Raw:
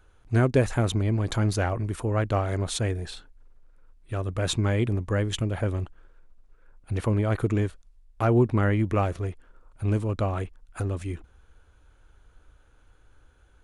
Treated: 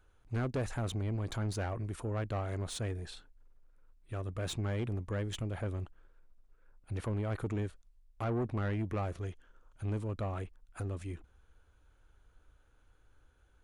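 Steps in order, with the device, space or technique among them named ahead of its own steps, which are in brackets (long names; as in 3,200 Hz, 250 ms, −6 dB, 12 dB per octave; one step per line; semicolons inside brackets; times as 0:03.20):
0:09.21–0:09.85: thirty-one-band graphic EQ 1,600 Hz +5 dB, 3,150 Hz +9 dB, 6,300 Hz +9 dB
saturation between pre-emphasis and de-emphasis (high-shelf EQ 3,500 Hz +8.5 dB; soft clipping −20.5 dBFS, distortion −13 dB; high-shelf EQ 3,500 Hz −8.5 dB)
level −8 dB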